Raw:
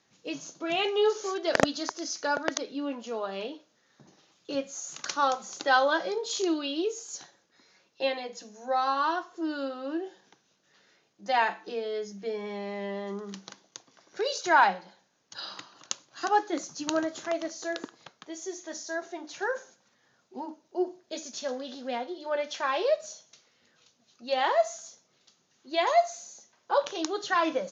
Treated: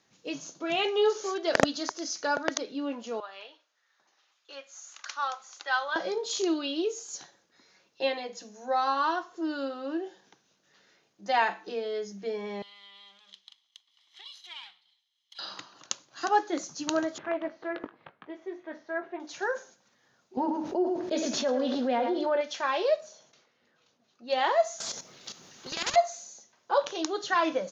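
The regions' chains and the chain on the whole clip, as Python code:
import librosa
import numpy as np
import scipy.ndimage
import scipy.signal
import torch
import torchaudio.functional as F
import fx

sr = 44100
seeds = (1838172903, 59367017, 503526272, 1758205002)

y = fx.chain(x, sr, fx.highpass(hz=1200.0, slope=12),
    fx.high_shelf(hz=3700.0, db=-11.0), at=(3.2, 5.96))
y = fx.chain(y, sr, fx.lower_of_two(delay_ms=0.97),
    fx.bandpass_q(hz=3400.0, q=6.1),
    fx.band_squash(depth_pct=70), at=(12.62, 15.39))
y = fx.chain(y, sr, fx.lowpass(hz=2500.0, slope=24),
    fx.doubler(ms=20.0, db=-9),
    fx.doppler_dist(depth_ms=0.22), at=(17.18, 19.2))
y = fx.chain(y, sr, fx.lowpass(hz=1500.0, slope=6),
    fx.echo_single(ms=106, db=-11.5),
    fx.env_flatten(amount_pct=70), at=(20.37, 22.41))
y = fx.chain(y, sr, fx.lowpass(hz=1800.0, slope=6),
    fx.low_shelf(hz=150.0, db=-8.0),
    fx.sustainer(db_per_s=75.0), at=(23.0, 24.3))
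y = fx.chain(y, sr, fx.level_steps(step_db=13),
    fx.spectral_comp(ratio=10.0), at=(24.8, 25.96))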